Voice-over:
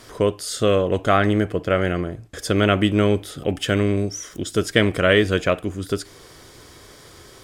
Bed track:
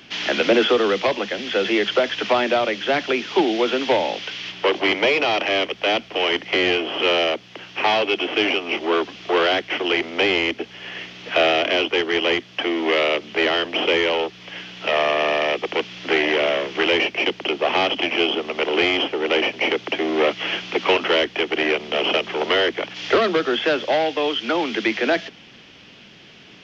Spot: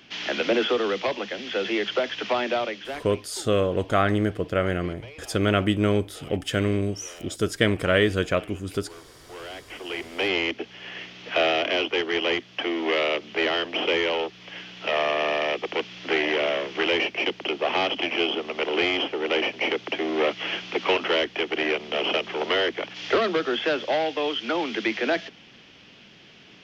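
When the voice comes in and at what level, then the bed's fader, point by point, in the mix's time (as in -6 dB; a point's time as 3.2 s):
2.85 s, -4.0 dB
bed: 2.62 s -6 dB
3.42 s -26.5 dB
9.12 s -26.5 dB
10.35 s -4.5 dB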